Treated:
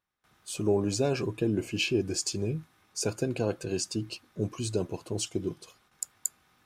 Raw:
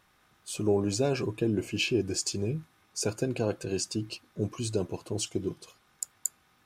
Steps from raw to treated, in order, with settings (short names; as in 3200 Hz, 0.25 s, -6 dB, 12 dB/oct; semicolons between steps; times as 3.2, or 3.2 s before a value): gate with hold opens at -55 dBFS